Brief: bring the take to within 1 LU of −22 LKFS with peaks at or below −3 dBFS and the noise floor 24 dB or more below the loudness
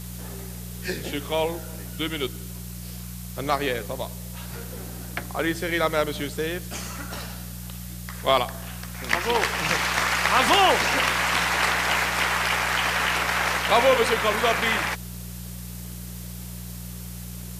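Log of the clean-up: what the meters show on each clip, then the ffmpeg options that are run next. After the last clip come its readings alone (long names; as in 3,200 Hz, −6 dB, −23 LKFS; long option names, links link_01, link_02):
mains hum 60 Hz; hum harmonics up to 180 Hz; level of the hum −34 dBFS; background noise floor −37 dBFS; target noise floor −48 dBFS; integrated loudness −23.5 LKFS; sample peak −5.0 dBFS; target loudness −22.0 LKFS
→ -af "bandreject=frequency=60:width_type=h:width=4,bandreject=frequency=120:width_type=h:width=4,bandreject=frequency=180:width_type=h:width=4"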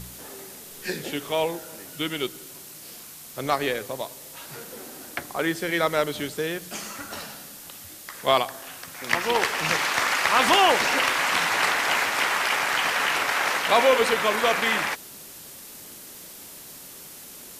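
mains hum none found; background noise floor −43 dBFS; target noise floor −47 dBFS
→ -af "afftdn=noise_reduction=6:noise_floor=-43"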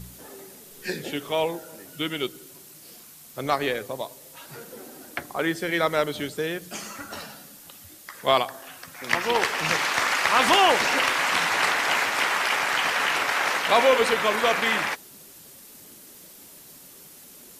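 background noise floor −48 dBFS; integrated loudness −23.0 LKFS; sample peak −5.0 dBFS; target loudness −22.0 LKFS
→ -af "volume=1dB"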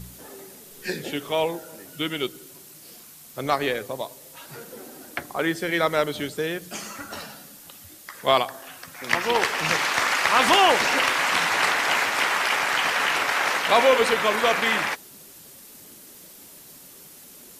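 integrated loudness −22.0 LKFS; sample peak −4.0 dBFS; background noise floor −47 dBFS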